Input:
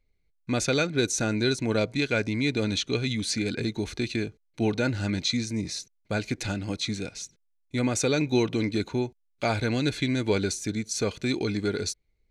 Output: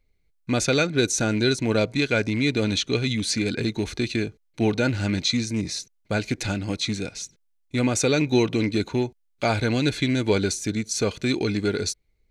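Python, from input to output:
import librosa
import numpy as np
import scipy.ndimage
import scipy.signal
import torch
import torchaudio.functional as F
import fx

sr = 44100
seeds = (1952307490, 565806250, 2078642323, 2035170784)

y = fx.rattle_buzz(x, sr, strikes_db=-28.0, level_db=-34.0)
y = F.gain(torch.from_numpy(y), 3.5).numpy()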